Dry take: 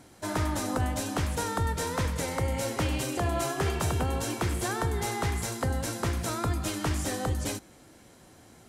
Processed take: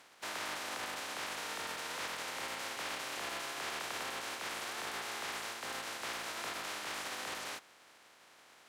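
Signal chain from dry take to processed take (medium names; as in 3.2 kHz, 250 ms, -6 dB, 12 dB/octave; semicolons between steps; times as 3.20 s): spectral contrast reduction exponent 0.19; peak limiter -24.5 dBFS, peak gain reduction 11 dB; band-pass filter 1.2 kHz, Q 0.53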